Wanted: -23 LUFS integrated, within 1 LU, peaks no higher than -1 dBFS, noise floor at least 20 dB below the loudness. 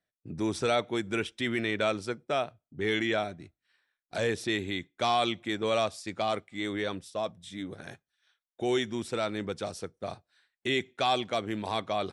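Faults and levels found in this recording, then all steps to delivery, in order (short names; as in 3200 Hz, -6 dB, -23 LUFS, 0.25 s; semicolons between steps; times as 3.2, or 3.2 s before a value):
loudness -31.5 LUFS; peak -15.0 dBFS; loudness target -23.0 LUFS
-> gain +8.5 dB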